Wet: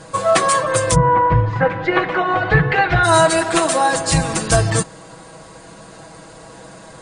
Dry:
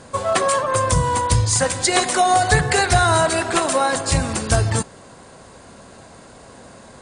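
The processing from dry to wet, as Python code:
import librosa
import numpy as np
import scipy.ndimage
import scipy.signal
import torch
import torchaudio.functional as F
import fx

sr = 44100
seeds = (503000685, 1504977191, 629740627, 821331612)

y = fx.lowpass(x, sr, hz=fx.line((0.94, 1800.0), (3.03, 3100.0)), slope=24, at=(0.94, 3.03), fade=0.02)
y = y + 0.78 * np.pad(y, (int(6.2 * sr / 1000.0), 0))[:len(y)]
y = fx.rider(y, sr, range_db=10, speed_s=2.0)
y = y * librosa.db_to_amplitude(1.0)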